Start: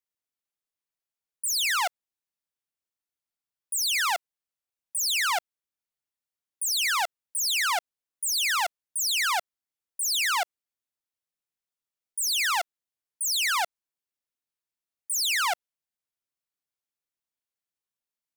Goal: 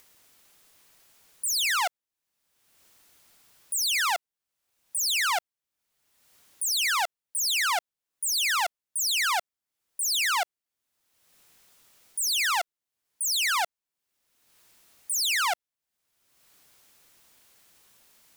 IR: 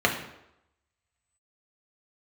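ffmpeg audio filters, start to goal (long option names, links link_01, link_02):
-af "acompressor=mode=upward:threshold=-35dB:ratio=2.5"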